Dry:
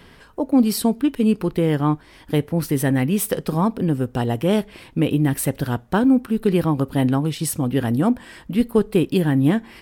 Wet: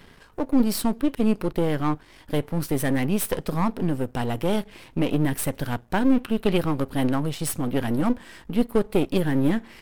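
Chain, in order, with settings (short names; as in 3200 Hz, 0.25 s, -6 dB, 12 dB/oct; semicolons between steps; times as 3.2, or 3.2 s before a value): half-wave gain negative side -12 dB; 6.12–6.58 bell 2900 Hz +9.5 dB 0.95 oct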